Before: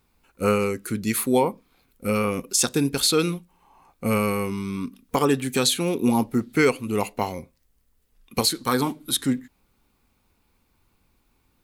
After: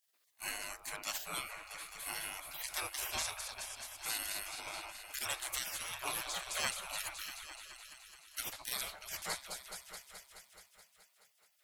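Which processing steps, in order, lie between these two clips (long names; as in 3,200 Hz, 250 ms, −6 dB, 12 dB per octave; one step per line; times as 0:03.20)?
echo whose low-pass opens from repeat to repeat 213 ms, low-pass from 400 Hz, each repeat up 2 octaves, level −6 dB
gate on every frequency bin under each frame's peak −25 dB weak
level −2 dB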